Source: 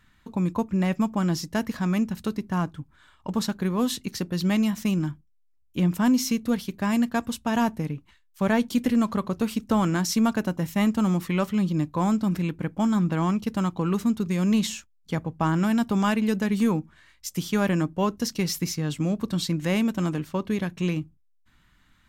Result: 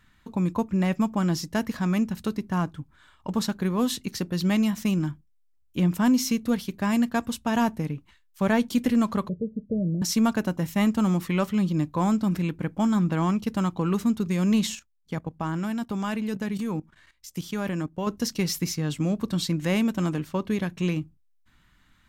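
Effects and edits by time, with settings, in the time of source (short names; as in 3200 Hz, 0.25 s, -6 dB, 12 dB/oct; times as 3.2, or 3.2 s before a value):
9.29–10.02 rippled Chebyshev low-pass 630 Hz, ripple 9 dB
14.75–18.07 level quantiser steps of 14 dB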